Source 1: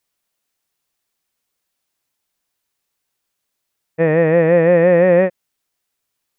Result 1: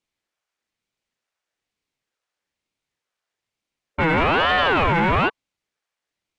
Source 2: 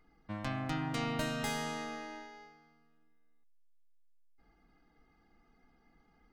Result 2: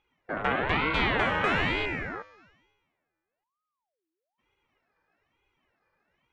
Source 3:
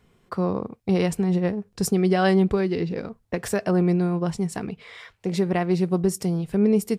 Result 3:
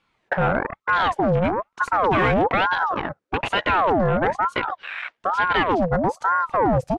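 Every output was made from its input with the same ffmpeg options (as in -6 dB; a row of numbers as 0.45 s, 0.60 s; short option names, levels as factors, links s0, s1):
-filter_complex "[0:a]equalizer=f=125:t=o:w=1:g=8,equalizer=f=500:t=o:w=1:g=-9,equalizer=f=1000:t=o:w=1:g=7,asplit=2[s0][s1];[s1]highpass=f=720:p=1,volume=14.1,asoftclip=type=tanh:threshold=0.447[s2];[s0][s2]amix=inputs=2:normalize=0,lowpass=f=4900:p=1,volume=0.501,aeval=exprs='0.266*(abs(mod(val(0)/0.266+3,4)-2)-1)':c=same,afwtdn=0.0562,lowpass=6900,equalizer=f=4100:w=1.5:g=-2.5,aeval=exprs='val(0)*sin(2*PI*790*n/s+790*0.6/1.1*sin(2*PI*1.1*n/s))':c=same"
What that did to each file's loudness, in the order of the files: -5.5 LU, +10.5 LU, +2.5 LU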